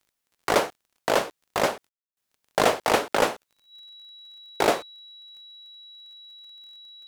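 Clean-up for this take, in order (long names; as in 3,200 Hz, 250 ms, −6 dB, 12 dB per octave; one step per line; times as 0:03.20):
click removal
notch filter 3,900 Hz, Q 30
ambience match 0:01.89–0:02.17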